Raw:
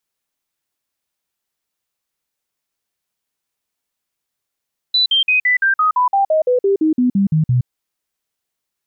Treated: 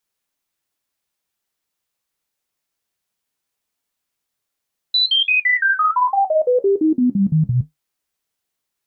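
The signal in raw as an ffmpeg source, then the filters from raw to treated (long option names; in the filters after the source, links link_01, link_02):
-f lavfi -i "aevalsrc='0.282*clip(min(mod(t,0.17),0.12-mod(t,0.17))/0.005,0,1)*sin(2*PI*3980*pow(2,-floor(t/0.17)/3)*mod(t,0.17))':duration=2.72:sample_rate=44100"
-filter_complex "[0:a]flanger=delay=9.4:depth=5.4:regen=-60:speed=1.3:shape=triangular,asplit=2[link_01][link_02];[link_02]alimiter=limit=-19dB:level=0:latency=1,volume=-3dB[link_03];[link_01][link_03]amix=inputs=2:normalize=0"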